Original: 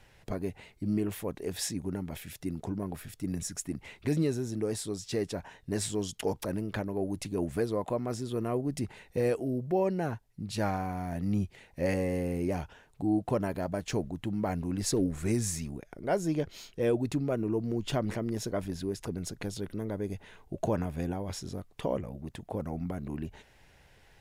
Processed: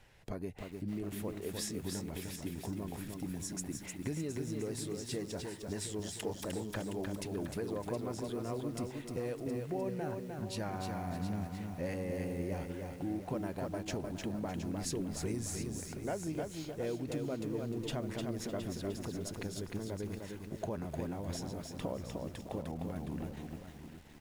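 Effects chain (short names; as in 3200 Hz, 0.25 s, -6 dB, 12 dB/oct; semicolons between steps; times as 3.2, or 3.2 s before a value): compressor 3:1, threshold -33 dBFS, peak gain reduction 8 dB; on a send: echo 0.717 s -10.5 dB; on the sum: lo-fi delay 0.304 s, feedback 35%, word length 9-bit, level -4 dB; gain -3.5 dB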